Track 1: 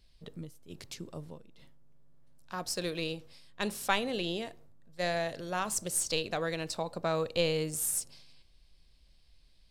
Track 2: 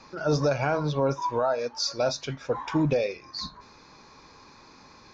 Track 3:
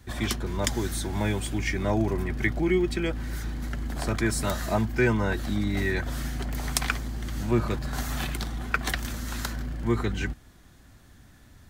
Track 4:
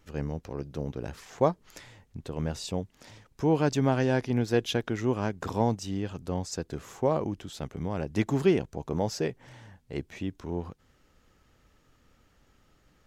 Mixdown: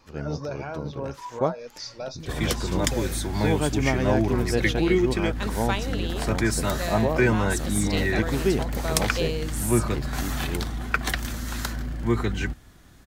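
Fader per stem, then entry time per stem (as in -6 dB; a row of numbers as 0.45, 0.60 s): 0.0, -9.0, +2.0, -0.5 dB; 1.80, 0.00, 2.20, 0.00 s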